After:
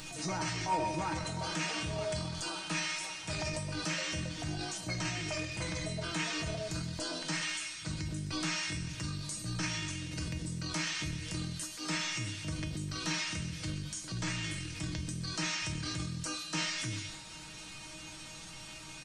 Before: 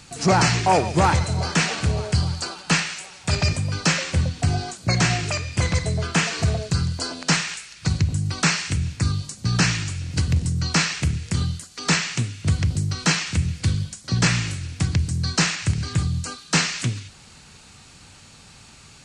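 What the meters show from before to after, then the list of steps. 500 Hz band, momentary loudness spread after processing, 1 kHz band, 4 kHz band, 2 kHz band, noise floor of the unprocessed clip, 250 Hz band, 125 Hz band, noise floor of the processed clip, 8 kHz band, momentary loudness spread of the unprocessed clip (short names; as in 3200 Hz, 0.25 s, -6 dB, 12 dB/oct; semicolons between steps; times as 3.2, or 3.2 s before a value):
-12.5 dB, 6 LU, -13.5 dB, -10.5 dB, -12.0 dB, -48 dBFS, -12.5 dB, -17.0 dB, -47 dBFS, -11.5 dB, 7 LU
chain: bell 6900 Hz -2 dB; comb 6.1 ms, depth 50%; in parallel at -2 dB: upward compressor, threshold -20 dBFS; on the sum: transient shaper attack -7 dB, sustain +7 dB; compressor, threshold -17 dBFS, peak gain reduction 9 dB; resonator 310 Hz, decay 0.35 s, harmonics all, mix 90%; on a send: thinning echo 0.13 s, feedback 72%, level -15 dB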